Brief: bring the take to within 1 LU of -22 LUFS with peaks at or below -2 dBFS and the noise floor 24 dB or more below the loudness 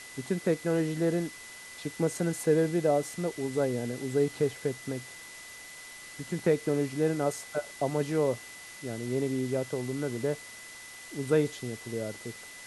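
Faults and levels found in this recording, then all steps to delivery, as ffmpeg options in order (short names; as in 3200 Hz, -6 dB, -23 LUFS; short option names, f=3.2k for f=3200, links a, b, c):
steady tone 2000 Hz; tone level -47 dBFS; noise floor -47 dBFS; noise floor target -55 dBFS; loudness -30.5 LUFS; peak -13.0 dBFS; loudness target -22.0 LUFS
-> -af "bandreject=f=2k:w=30"
-af "afftdn=nr=8:nf=-47"
-af "volume=8.5dB"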